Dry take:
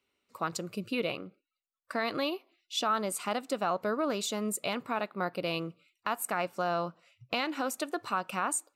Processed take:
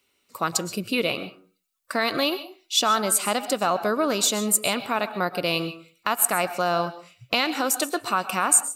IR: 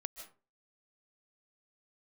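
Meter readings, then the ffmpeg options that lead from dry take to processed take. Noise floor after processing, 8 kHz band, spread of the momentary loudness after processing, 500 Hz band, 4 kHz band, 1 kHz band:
-70 dBFS, +15.5 dB, 8 LU, +7.0 dB, +11.5 dB, +7.5 dB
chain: -filter_complex "[0:a]highshelf=f=4100:g=10.5,asplit=2[s0][s1];[1:a]atrim=start_sample=2205,asetrate=52920,aresample=44100[s2];[s1][s2]afir=irnorm=-1:irlink=0,volume=2[s3];[s0][s3]amix=inputs=2:normalize=0"

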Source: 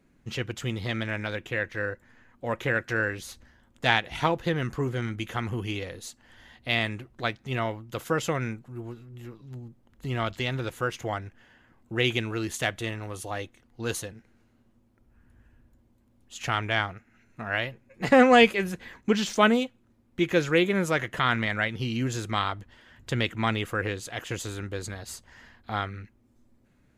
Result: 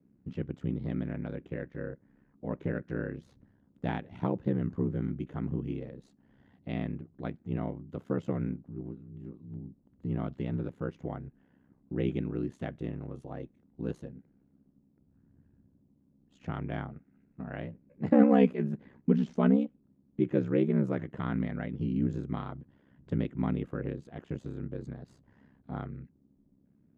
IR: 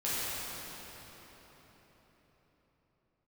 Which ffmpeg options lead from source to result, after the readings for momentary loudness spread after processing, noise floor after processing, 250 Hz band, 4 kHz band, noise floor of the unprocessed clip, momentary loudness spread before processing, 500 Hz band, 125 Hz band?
17 LU, -68 dBFS, 0.0 dB, under -20 dB, -64 dBFS, 18 LU, -6.5 dB, -2.0 dB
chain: -af "aeval=exprs='val(0)*sin(2*PI*33*n/s)':c=same,bandpass=f=200:t=q:w=1.2:csg=0,volume=1.68"

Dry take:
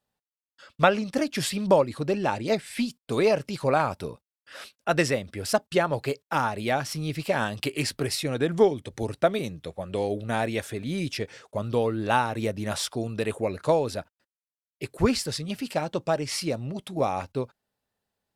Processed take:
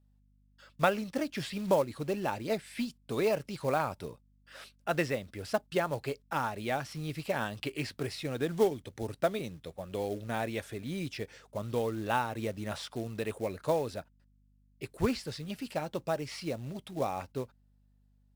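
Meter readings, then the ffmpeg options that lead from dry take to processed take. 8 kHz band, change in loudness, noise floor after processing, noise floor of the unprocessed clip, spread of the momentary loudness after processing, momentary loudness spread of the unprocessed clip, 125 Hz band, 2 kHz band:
-11.5 dB, -7.0 dB, -66 dBFS, under -85 dBFS, 11 LU, 11 LU, -7.0 dB, -7.0 dB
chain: -filter_complex "[0:a]acrossover=split=4300[s0][s1];[s1]acompressor=threshold=0.00794:ratio=4:attack=1:release=60[s2];[s0][s2]amix=inputs=2:normalize=0,acrusher=bits=5:mode=log:mix=0:aa=0.000001,aeval=exprs='val(0)+0.00126*(sin(2*PI*50*n/s)+sin(2*PI*2*50*n/s)/2+sin(2*PI*3*50*n/s)/3+sin(2*PI*4*50*n/s)/4+sin(2*PI*5*50*n/s)/5)':c=same,volume=0.447"

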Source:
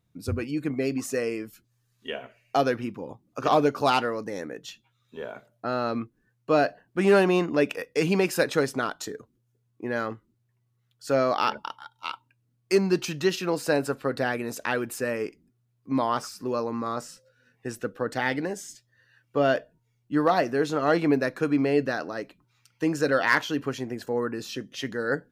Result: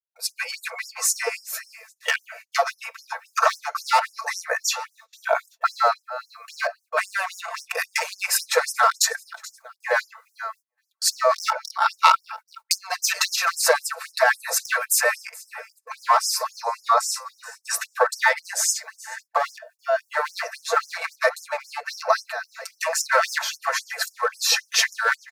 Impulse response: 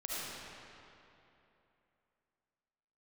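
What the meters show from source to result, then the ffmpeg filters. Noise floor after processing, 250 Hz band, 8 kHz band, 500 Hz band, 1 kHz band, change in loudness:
-72 dBFS, under -40 dB, +16.5 dB, -2.0 dB, +6.5 dB, +3.5 dB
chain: -filter_complex "[0:a]asplit=2[s0][s1];[s1]aecho=0:1:430|860:0.0708|0.0191[s2];[s0][s2]amix=inputs=2:normalize=0,aeval=exprs='clip(val(0),-1,0.0501)':c=same,equalizer=f=3100:w=4.3:g=-13.5,aecho=1:1:4.5:0.99,acompressor=threshold=0.0282:ratio=16,adynamicequalizer=threshold=0.00316:dfrequency=1100:dqfactor=0.75:tfrequency=1100:tqfactor=0.75:attack=5:release=100:ratio=0.375:range=1.5:mode=boostabove:tftype=bell,dynaudnorm=f=110:g=5:m=3.76,agate=range=0.0224:threshold=0.00631:ratio=16:detection=peak,afftfilt=real='re*gte(b*sr/1024,470*pow(5200/470,0.5+0.5*sin(2*PI*3.7*pts/sr)))':imag='im*gte(b*sr/1024,470*pow(5200/470,0.5+0.5*sin(2*PI*3.7*pts/sr)))':win_size=1024:overlap=0.75,volume=2.51"

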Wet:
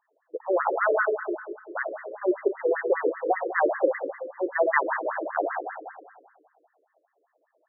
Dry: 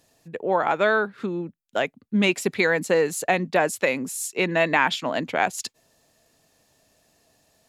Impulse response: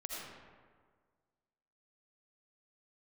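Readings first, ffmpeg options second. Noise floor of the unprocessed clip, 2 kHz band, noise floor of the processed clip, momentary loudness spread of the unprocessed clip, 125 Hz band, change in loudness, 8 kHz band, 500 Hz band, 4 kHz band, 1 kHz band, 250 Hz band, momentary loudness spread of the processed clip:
-68 dBFS, -5.5 dB, -75 dBFS, 10 LU, under -40 dB, -3.5 dB, under -40 dB, -1.0 dB, under -40 dB, -2.5 dB, -6.5 dB, 12 LU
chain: -filter_complex "[0:a]aeval=exprs='0.531*(cos(1*acos(clip(val(0)/0.531,-1,1)))-cos(1*PI/2))+0.0944*(cos(2*acos(clip(val(0)/0.531,-1,1)))-cos(2*PI/2))+0.0668*(cos(3*acos(clip(val(0)/0.531,-1,1)))-cos(3*PI/2))+0.0335*(cos(8*acos(clip(val(0)/0.531,-1,1)))-cos(8*PI/2))':c=same,asplit=2[s0][s1];[1:a]atrim=start_sample=2205,lowshelf=f=220:g=11.5[s2];[s1][s2]afir=irnorm=-1:irlink=0,volume=0.944[s3];[s0][s3]amix=inputs=2:normalize=0,afftfilt=real='re*between(b*sr/1024,400*pow(1500/400,0.5+0.5*sin(2*PI*5.1*pts/sr))/1.41,400*pow(1500/400,0.5+0.5*sin(2*PI*5.1*pts/sr))*1.41)':imag='im*between(b*sr/1024,400*pow(1500/400,0.5+0.5*sin(2*PI*5.1*pts/sr))/1.41,400*pow(1500/400,0.5+0.5*sin(2*PI*5.1*pts/sr))*1.41)':win_size=1024:overlap=0.75"

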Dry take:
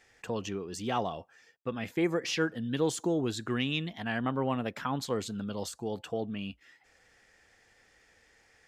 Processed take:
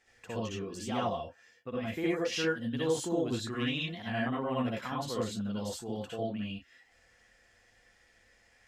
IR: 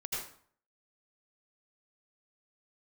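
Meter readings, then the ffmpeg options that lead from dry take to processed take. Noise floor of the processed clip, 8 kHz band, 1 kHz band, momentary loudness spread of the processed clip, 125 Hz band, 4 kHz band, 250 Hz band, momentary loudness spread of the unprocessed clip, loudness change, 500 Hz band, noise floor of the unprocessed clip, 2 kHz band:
-66 dBFS, -1.5 dB, -1.5 dB, 8 LU, -1.5 dB, -0.5 dB, -1.0 dB, 8 LU, -1.0 dB, -0.5 dB, -65 dBFS, -1.0 dB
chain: -filter_complex "[1:a]atrim=start_sample=2205,atrim=end_sample=6615,asetrate=61740,aresample=44100[s0];[0:a][s0]afir=irnorm=-1:irlink=0"

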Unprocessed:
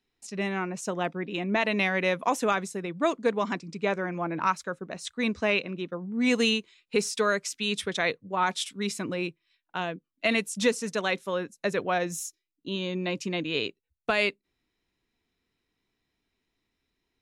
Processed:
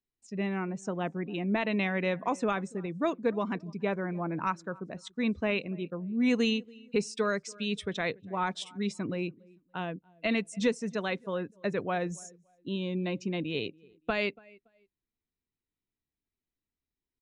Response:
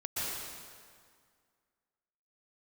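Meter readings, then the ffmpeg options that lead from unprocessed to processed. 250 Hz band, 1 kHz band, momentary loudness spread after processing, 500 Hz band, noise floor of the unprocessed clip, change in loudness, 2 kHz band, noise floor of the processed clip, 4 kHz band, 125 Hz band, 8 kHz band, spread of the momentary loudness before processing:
-0.5 dB, -5.5 dB, 9 LU, -3.5 dB, -82 dBFS, -3.5 dB, -6.0 dB, under -85 dBFS, -7.0 dB, +0.5 dB, -10.0 dB, 10 LU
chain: -filter_complex "[0:a]highshelf=f=6500:g=-4.5,aresample=22050,aresample=44100,lowshelf=f=280:g=9.5,asplit=2[s0][s1];[s1]aecho=0:1:284|568:0.0668|0.0247[s2];[s0][s2]amix=inputs=2:normalize=0,afftdn=nr=13:nf=-44,volume=0.501"

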